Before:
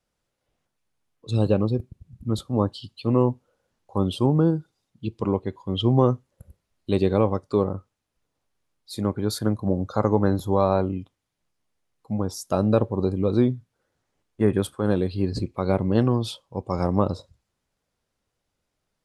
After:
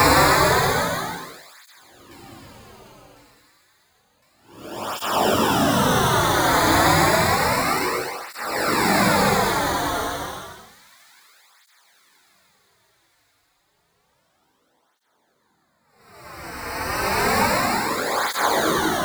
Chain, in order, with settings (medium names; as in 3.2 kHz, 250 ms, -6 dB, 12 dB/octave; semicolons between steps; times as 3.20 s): spectral contrast reduction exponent 0.12; high-pass 230 Hz; peaking EQ 930 Hz +8 dB; in parallel at +3 dB: peak limiter -15.5 dBFS, peak gain reduction 13.5 dB; on the sum: decimation with a swept rate 19×, swing 60% 0.64 Hz; Paulstretch 5.7×, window 0.25 s, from 6.00 s; on a send: feedback echo behind a high-pass 1056 ms, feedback 48%, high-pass 2 kHz, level -23 dB; on the sum: cancelling through-zero flanger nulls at 0.3 Hz, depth 5.4 ms; trim +1 dB